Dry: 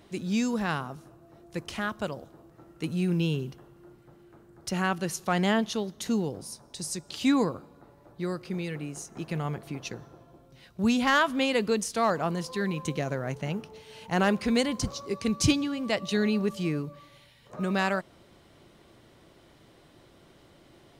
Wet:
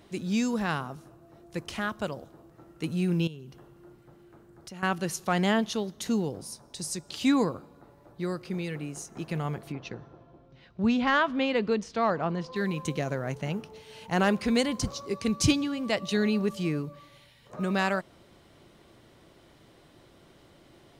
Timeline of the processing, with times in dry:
3.27–4.83 compressor 3:1, threshold -44 dBFS
9.72–12.56 air absorption 180 m

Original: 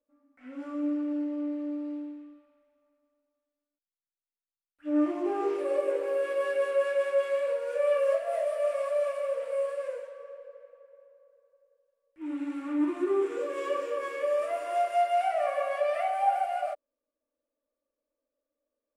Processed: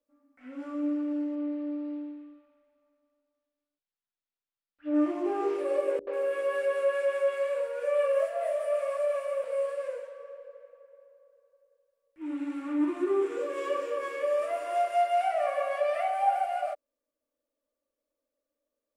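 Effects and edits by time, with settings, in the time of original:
1.35–4.94 LPF 4700 Hz 24 dB/oct
5.99–9.44 three bands offset in time lows, mids, highs 80/140 ms, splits 310/4400 Hz

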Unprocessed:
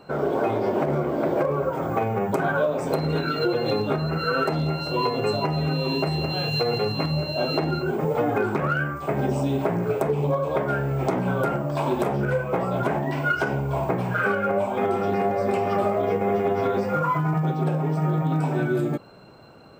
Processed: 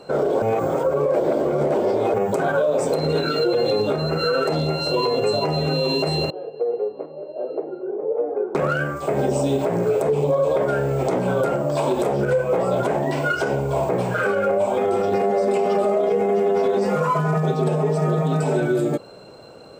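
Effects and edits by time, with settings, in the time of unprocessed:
0.42–2.14 reverse
6.3–8.55 ladder band-pass 480 Hz, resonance 45%
15.23–18.61 comb 4.7 ms, depth 82%
whole clip: ten-band EQ 500 Hz +10 dB, 4000 Hz +5 dB, 8000 Hz +11 dB; limiter -12 dBFS

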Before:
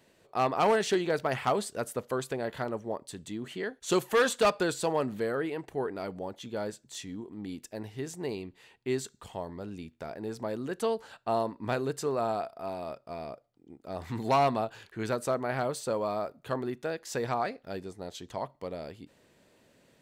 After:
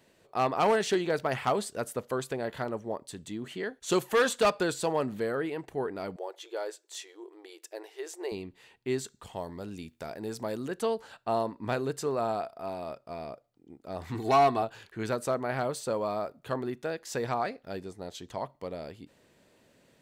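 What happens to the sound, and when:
6.16–8.32 brick-wall FIR high-pass 320 Hz
9.36–10.68 high shelf 4200 Hz +9 dB
14.14–14.63 comb 2.7 ms

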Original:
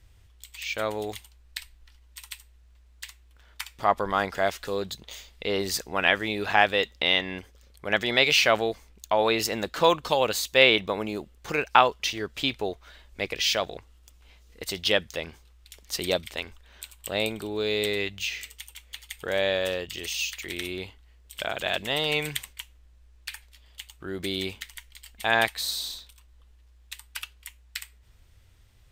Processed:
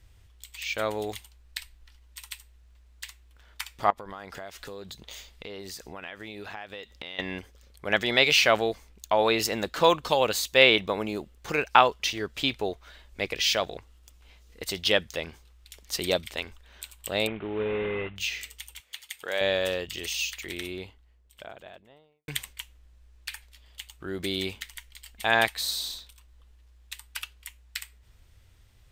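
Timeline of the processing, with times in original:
3.9–7.19 compressor, threshold -37 dBFS
17.27–18.16 CVSD 16 kbps
18.8–19.41 HPF 710 Hz 6 dB/oct
20.1–22.28 studio fade out

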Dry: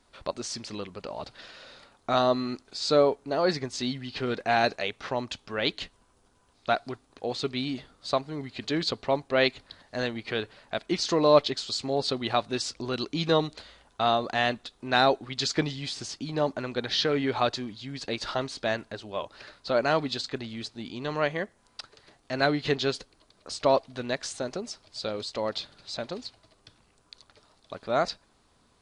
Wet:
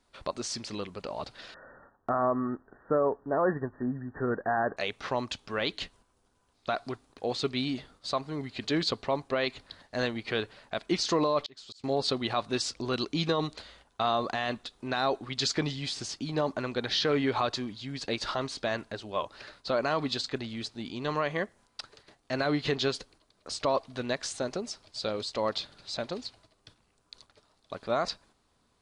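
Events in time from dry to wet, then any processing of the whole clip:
1.54–4.77 brick-wall FIR low-pass 1900 Hz
11.43–11.84 auto swell 0.73 s
whole clip: gate -56 dBFS, range -6 dB; dynamic EQ 1100 Hz, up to +6 dB, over -45 dBFS, Q 5; limiter -17 dBFS

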